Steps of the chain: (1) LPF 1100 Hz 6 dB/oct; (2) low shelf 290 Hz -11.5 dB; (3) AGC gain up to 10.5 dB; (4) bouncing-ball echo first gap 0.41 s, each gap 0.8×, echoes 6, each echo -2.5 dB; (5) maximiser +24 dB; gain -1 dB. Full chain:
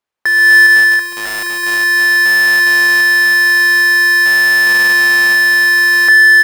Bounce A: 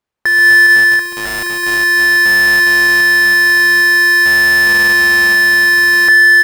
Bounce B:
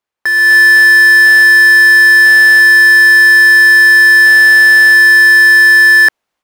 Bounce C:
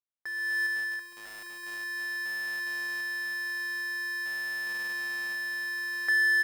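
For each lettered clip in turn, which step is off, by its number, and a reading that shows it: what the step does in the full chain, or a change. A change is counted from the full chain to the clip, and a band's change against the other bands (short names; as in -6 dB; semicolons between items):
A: 2, 250 Hz band +5.0 dB; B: 4, momentary loudness spread change -7 LU; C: 5, crest factor change +5.0 dB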